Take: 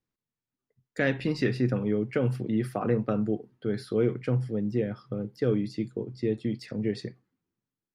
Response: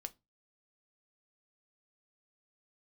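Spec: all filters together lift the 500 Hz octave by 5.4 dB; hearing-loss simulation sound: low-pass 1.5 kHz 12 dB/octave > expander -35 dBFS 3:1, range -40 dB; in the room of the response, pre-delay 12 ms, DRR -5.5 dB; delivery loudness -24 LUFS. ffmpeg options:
-filter_complex "[0:a]equalizer=f=500:t=o:g=6.5,asplit=2[s0][s1];[1:a]atrim=start_sample=2205,adelay=12[s2];[s1][s2]afir=irnorm=-1:irlink=0,volume=2.82[s3];[s0][s3]amix=inputs=2:normalize=0,lowpass=1500,agate=range=0.01:threshold=0.0178:ratio=3,volume=0.668"

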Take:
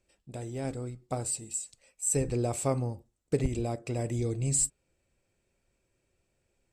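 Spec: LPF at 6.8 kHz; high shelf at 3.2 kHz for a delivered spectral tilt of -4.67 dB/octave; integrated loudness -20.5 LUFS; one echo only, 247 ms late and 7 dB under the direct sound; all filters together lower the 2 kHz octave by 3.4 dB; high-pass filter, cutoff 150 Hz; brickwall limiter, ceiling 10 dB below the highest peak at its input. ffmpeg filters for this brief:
-af "highpass=150,lowpass=6800,equalizer=f=2000:t=o:g=-7.5,highshelf=f=3200:g=8,alimiter=limit=0.0794:level=0:latency=1,aecho=1:1:247:0.447,volume=4.73"

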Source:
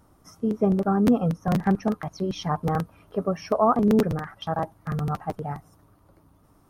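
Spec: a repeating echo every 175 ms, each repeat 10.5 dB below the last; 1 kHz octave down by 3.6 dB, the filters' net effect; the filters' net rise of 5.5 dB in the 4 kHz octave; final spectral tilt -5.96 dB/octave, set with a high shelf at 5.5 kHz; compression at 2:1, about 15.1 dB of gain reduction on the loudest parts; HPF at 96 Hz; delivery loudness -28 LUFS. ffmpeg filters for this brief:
-af "highpass=96,equalizer=f=1000:t=o:g=-5.5,equalizer=f=4000:t=o:g=4.5,highshelf=f=5500:g=8,acompressor=threshold=0.00562:ratio=2,aecho=1:1:175|350|525:0.299|0.0896|0.0269,volume=3.35"

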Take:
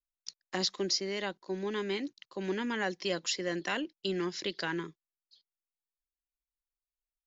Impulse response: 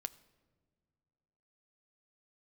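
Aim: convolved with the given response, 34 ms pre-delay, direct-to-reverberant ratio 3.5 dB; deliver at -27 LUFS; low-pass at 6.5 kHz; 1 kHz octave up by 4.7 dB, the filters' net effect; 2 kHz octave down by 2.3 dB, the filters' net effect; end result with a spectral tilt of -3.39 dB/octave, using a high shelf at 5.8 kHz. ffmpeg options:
-filter_complex "[0:a]lowpass=6500,equalizer=f=1000:t=o:g=7,equalizer=f=2000:t=o:g=-6,highshelf=f=5800:g=4,asplit=2[s0][s1];[1:a]atrim=start_sample=2205,adelay=34[s2];[s1][s2]afir=irnorm=-1:irlink=0,volume=0.891[s3];[s0][s3]amix=inputs=2:normalize=0,volume=1.78"

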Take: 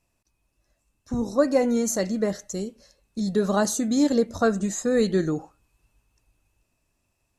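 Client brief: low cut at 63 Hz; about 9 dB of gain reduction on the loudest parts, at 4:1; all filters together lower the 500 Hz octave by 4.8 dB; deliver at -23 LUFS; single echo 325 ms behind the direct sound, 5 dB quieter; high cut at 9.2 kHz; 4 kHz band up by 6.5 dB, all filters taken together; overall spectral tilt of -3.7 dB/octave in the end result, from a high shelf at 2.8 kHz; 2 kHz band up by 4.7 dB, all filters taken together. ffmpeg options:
-af "highpass=63,lowpass=9200,equalizer=f=500:t=o:g=-6,equalizer=f=2000:t=o:g=4.5,highshelf=f=2800:g=4.5,equalizer=f=4000:t=o:g=3,acompressor=threshold=0.0355:ratio=4,aecho=1:1:325:0.562,volume=2.51"

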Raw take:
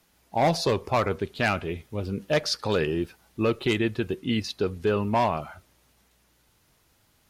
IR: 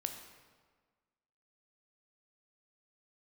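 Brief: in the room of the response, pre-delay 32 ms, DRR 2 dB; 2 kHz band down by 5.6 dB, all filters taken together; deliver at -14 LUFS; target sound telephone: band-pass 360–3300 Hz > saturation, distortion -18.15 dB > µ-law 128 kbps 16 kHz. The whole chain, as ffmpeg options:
-filter_complex "[0:a]equalizer=f=2000:t=o:g=-6.5,asplit=2[s0][s1];[1:a]atrim=start_sample=2205,adelay=32[s2];[s1][s2]afir=irnorm=-1:irlink=0,volume=0.794[s3];[s0][s3]amix=inputs=2:normalize=0,highpass=360,lowpass=3300,asoftclip=threshold=0.15,volume=5.62" -ar 16000 -c:a pcm_mulaw

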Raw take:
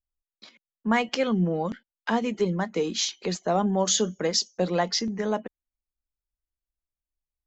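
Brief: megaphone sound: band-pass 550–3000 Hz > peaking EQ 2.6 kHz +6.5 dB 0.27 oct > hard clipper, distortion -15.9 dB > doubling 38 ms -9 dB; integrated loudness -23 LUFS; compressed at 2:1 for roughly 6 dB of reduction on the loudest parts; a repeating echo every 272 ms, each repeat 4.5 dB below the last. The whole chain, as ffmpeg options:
-filter_complex "[0:a]acompressor=threshold=0.0316:ratio=2,highpass=550,lowpass=3000,equalizer=f=2600:t=o:w=0.27:g=6.5,aecho=1:1:272|544|816|1088|1360|1632|1904|2176|2448:0.596|0.357|0.214|0.129|0.0772|0.0463|0.0278|0.0167|0.01,asoftclip=type=hard:threshold=0.0447,asplit=2[s0][s1];[s1]adelay=38,volume=0.355[s2];[s0][s2]amix=inputs=2:normalize=0,volume=3.98"

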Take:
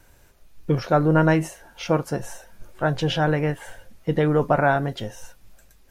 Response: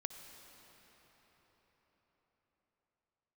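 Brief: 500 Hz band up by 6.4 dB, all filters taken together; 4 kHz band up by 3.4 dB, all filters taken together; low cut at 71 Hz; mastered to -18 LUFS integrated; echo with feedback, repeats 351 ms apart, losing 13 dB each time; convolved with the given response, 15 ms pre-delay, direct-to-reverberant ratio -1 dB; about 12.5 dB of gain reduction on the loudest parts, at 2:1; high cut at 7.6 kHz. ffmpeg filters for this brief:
-filter_complex "[0:a]highpass=71,lowpass=7600,equalizer=f=500:t=o:g=7.5,equalizer=f=4000:t=o:g=5,acompressor=threshold=0.02:ratio=2,aecho=1:1:351|702|1053:0.224|0.0493|0.0108,asplit=2[s0][s1];[1:a]atrim=start_sample=2205,adelay=15[s2];[s1][s2]afir=irnorm=-1:irlink=0,volume=1.41[s3];[s0][s3]amix=inputs=2:normalize=0,volume=2.82"

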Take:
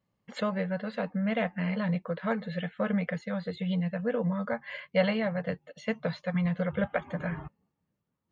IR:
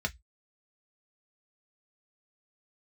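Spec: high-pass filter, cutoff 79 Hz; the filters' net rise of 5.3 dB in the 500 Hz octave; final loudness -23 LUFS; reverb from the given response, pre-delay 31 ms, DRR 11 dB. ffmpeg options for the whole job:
-filter_complex "[0:a]highpass=79,equalizer=f=500:t=o:g=6,asplit=2[s0][s1];[1:a]atrim=start_sample=2205,adelay=31[s2];[s1][s2]afir=irnorm=-1:irlink=0,volume=0.158[s3];[s0][s3]amix=inputs=2:normalize=0,volume=1.88"

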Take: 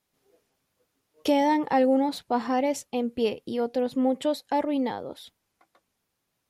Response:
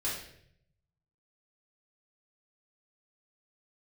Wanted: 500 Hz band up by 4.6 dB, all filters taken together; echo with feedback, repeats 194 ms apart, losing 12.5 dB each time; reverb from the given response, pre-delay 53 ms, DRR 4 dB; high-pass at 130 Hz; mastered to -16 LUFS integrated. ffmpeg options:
-filter_complex "[0:a]highpass=130,equalizer=f=500:t=o:g=5,aecho=1:1:194|388|582:0.237|0.0569|0.0137,asplit=2[s0][s1];[1:a]atrim=start_sample=2205,adelay=53[s2];[s1][s2]afir=irnorm=-1:irlink=0,volume=0.376[s3];[s0][s3]amix=inputs=2:normalize=0,volume=1.88"

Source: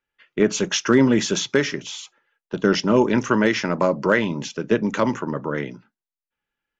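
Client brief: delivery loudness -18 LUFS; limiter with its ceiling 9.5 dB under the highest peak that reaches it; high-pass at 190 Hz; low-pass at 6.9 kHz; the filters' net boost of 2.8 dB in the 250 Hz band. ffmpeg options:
-af "highpass=190,lowpass=6900,equalizer=f=250:t=o:g=5,volume=1.88,alimiter=limit=0.447:level=0:latency=1"

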